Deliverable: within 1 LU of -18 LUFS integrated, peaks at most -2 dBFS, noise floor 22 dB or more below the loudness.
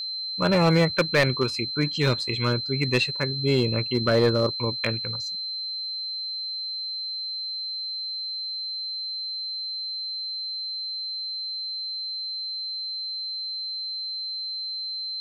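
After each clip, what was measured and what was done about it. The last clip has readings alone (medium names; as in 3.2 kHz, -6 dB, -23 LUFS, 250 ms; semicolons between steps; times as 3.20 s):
clipped samples 0.2%; clipping level -13.5 dBFS; steady tone 4.1 kHz; tone level -29 dBFS; loudness -26.0 LUFS; peak level -13.5 dBFS; loudness target -18.0 LUFS
-> clip repair -13.5 dBFS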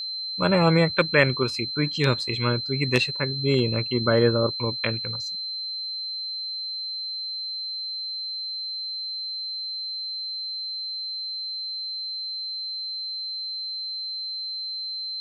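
clipped samples 0.0%; steady tone 4.1 kHz; tone level -29 dBFS
-> band-stop 4.1 kHz, Q 30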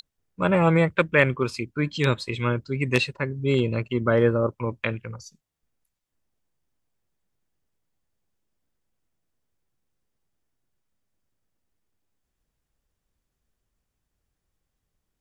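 steady tone not found; loudness -23.5 LUFS; peak level -4.5 dBFS; loudness target -18.0 LUFS
-> trim +5.5 dB; peak limiter -2 dBFS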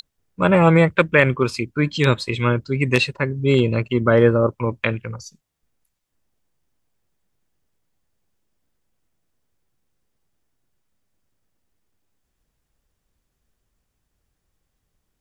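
loudness -18.5 LUFS; peak level -2.0 dBFS; noise floor -76 dBFS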